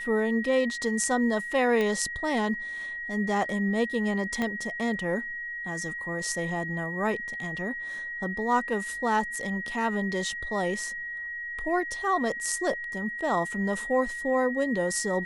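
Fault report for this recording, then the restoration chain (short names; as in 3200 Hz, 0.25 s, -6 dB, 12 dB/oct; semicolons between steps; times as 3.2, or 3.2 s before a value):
tone 1900 Hz -33 dBFS
1.81 pop -16 dBFS
4.42 pop -16 dBFS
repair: de-click; notch 1900 Hz, Q 30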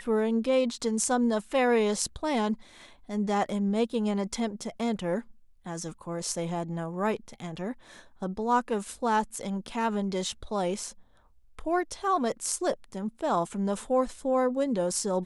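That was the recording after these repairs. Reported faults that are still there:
4.42 pop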